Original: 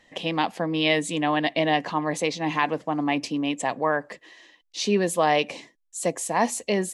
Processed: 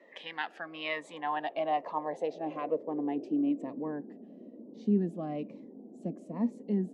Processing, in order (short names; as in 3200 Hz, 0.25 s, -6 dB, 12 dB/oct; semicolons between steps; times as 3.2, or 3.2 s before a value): band noise 210–660 Hz -41 dBFS; band-pass sweep 1700 Hz -> 220 Hz, 0.4–4.17; cascading phaser falling 1.1 Hz